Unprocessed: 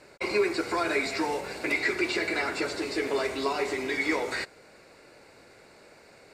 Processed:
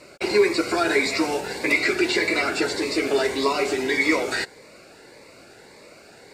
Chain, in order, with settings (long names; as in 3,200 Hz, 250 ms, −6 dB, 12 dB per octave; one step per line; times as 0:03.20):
low-shelf EQ 120 Hz −6 dB
phaser whose notches keep moving one way rising 1.7 Hz
level +8.5 dB